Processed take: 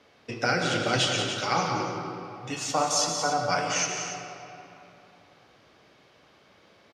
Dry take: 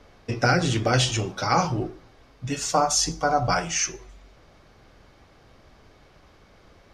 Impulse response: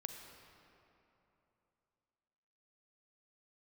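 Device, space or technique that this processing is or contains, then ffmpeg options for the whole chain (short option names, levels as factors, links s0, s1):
stadium PA: -filter_complex "[0:a]highpass=160,equalizer=f=3000:t=o:w=1.4:g=5.5,aecho=1:1:177.8|282.8:0.398|0.282[s0];[1:a]atrim=start_sample=2205[s1];[s0][s1]afir=irnorm=-1:irlink=0,volume=0.794"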